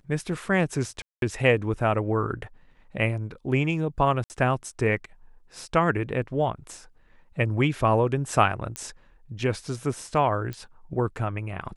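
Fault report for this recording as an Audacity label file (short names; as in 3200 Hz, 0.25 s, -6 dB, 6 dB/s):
1.020000	1.220000	gap 0.202 s
4.240000	4.300000	gap 59 ms
8.760000	8.760000	pop -16 dBFS
10.530000	10.530000	pop -21 dBFS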